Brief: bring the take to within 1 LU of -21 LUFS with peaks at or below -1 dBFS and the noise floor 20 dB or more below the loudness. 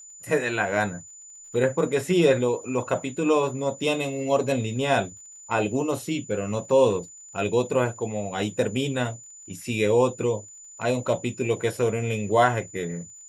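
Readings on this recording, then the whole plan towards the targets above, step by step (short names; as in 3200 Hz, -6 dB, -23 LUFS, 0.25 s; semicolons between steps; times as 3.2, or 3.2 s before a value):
ticks 53/s; steady tone 7000 Hz; tone level -43 dBFS; loudness -25.0 LUFS; peak -6.0 dBFS; loudness target -21.0 LUFS
-> de-click; notch 7000 Hz, Q 30; gain +4 dB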